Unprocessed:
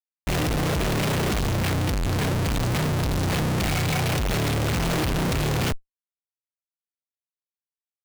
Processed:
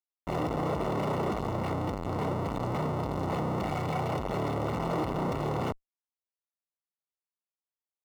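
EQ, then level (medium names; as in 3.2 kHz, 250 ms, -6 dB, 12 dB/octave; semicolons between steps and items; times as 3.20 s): Savitzky-Golay filter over 65 samples; tilt EQ +2.5 dB/octave; bass shelf 64 Hz -8.5 dB; 0.0 dB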